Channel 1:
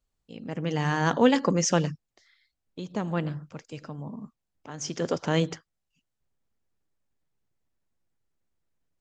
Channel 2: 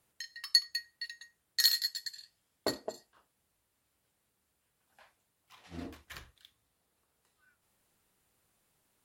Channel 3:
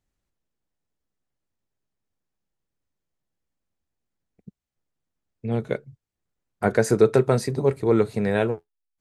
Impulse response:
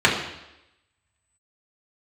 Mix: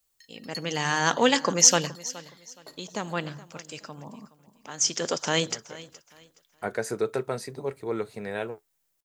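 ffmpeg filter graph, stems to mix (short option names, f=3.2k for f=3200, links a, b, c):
-filter_complex "[0:a]aemphasis=mode=production:type=75kf,volume=2.5dB,asplit=3[a][b][c];[b]volume=-18.5dB[d];[1:a]volume=-12.5dB,asplit=2[e][f];[f]volume=-11.5dB[g];[2:a]volume=-6dB[h];[c]apad=whole_len=397138[i];[h][i]sidechaincompress=threshold=-26dB:ratio=8:attack=16:release=1160[j];[d][g]amix=inputs=2:normalize=0,aecho=0:1:420|840|1260|1680:1|0.27|0.0729|0.0197[k];[a][e][j][k]amix=inputs=4:normalize=0,lowshelf=f=340:g=-11.5"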